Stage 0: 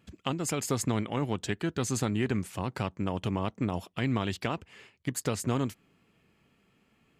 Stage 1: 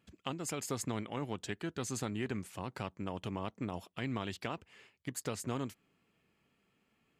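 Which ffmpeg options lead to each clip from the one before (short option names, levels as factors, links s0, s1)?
-af "lowshelf=f=210:g=-4.5,volume=0.473"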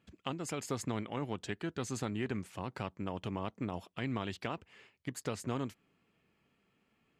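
-af "highshelf=f=7200:g=-9,volume=1.12"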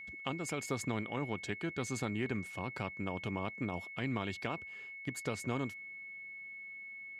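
-af "aeval=exprs='val(0)+0.00562*sin(2*PI*2200*n/s)':c=same"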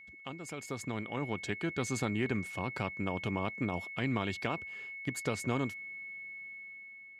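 -af "dynaudnorm=f=430:g=5:m=2.82,volume=0.531"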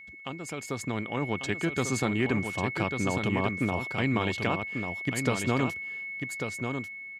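-af "aecho=1:1:1144:0.501,volume=1.88"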